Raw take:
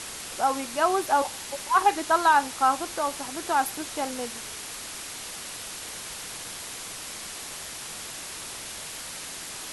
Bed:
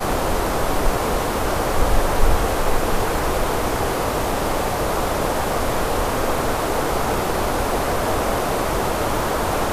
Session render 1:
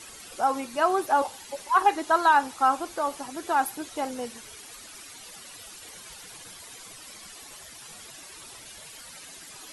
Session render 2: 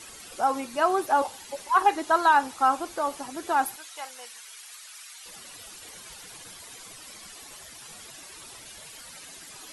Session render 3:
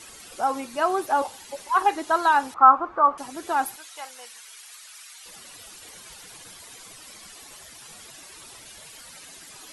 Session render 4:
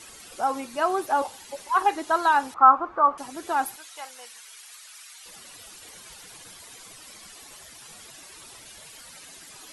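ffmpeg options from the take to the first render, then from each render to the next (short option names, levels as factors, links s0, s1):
-af "afftdn=nr=12:nf=-38"
-filter_complex "[0:a]asettb=1/sr,asplit=3[s0][s1][s2];[s0]atrim=end=3.764[s3];[s1]atrim=start=3.76:end=5.26,asetpts=PTS-STARTPTS,afade=t=in:d=0.004:c=qsin,afade=t=out:st=1.496:d=0.004:c=qsin,highpass=1200[s4];[s2]atrim=start=5.256[s5];[s3][s4]acrossfade=d=0.004:c1=hsin:c2=qsin[s6];[s6][s5]acrossfade=d=0.004:c1=qsin:c2=hsin"
-filter_complex "[0:a]asettb=1/sr,asplit=3[s0][s1][s2];[s0]atrim=end=2.544[s3];[s1]atrim=start=2.54:end=3.18,asetpts=PTS-STARTPTS,afade=t=in:d=0.004:c=qsin,afade=t=out:st=0.636:d=0.004:c=qsin,lowpass=f=1200:t=q:w=4.8[s4];[s2]atrim=start=3.176[s5];[s3][s4]acrossfade=d=0.004:c1=hsin:c2=qsin[s6];[s6][s5]acrossfade=d=0.004:c1=qsin:c2=hsin"
-af "volume=0.891"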